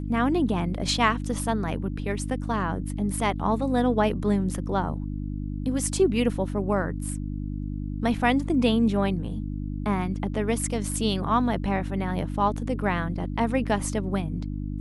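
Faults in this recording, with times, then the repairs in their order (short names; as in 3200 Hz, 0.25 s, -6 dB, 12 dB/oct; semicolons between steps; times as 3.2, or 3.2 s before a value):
hum 50 Hz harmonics 6 -31 dBFS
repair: de-hum 50 Hz, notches 6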